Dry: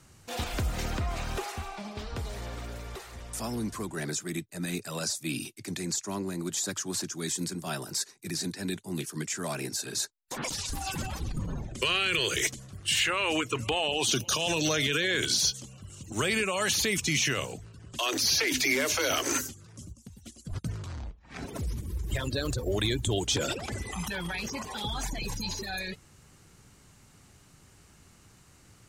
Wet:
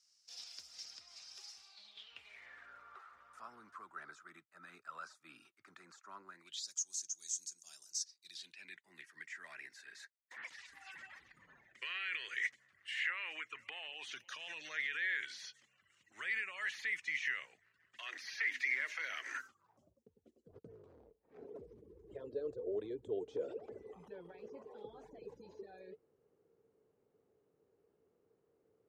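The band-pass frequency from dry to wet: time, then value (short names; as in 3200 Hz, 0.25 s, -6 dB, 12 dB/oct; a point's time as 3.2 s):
band-pass, Q 7.7
1.61 s 5200 Hz
2.83 s 1300 Hz
6.3 s 1300 Hz
6.71 s 6400 Hz
7.94 s 6400 Hz
8.77 s 1900 Hz
19.28 s 1900 Hz
20.06 s 450 Hz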